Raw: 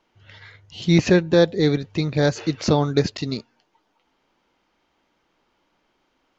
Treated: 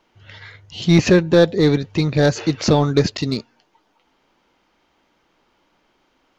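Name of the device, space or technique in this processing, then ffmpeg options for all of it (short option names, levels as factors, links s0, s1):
parallel distortion: -filter_complex "[0:a]asplit=2[s0][s1];[s1]asoftclip=type=hard:threshold=0.112,volume=0.596[s2];[s0][s2]amix=inputs=2:normalize=0,volume=1.12"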